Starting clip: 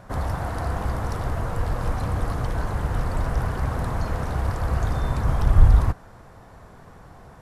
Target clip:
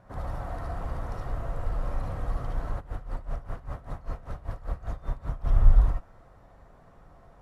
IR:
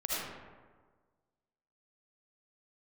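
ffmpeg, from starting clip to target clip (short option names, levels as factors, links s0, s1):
-filter_complex "[0:a]highshelf=f=3100:g=-8.5[s0];[1:a]atrim=start_sample=2205,atrim=end_sample=3528[s1];[s0][s1]afir=irnorm=-1:irlink=0,asplit=3[s2][s3][s4];[s2]afade=t=out:st=2.79:d=0.02[s5];[s3]aeval=exprs='val(0)*pow(10,-18*(0.5-0.5*cos(2*PI*5.1*n/s))/20)':c=same,afade=t=in:st=2.79:d=0.02,afade=t=out:st=5.44:d=0.02[s6];[s4]afade=t=in:st=5.44:d=0.02[s7];[s5][s6][s7]amix=inputs=3:normalize=0,volume=0.376"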